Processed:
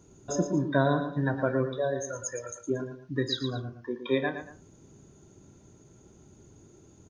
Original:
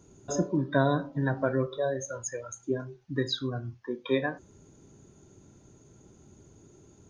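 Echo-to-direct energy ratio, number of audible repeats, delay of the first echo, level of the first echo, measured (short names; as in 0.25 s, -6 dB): -8.5 dB, 2, 0.115 s, -9.0 dB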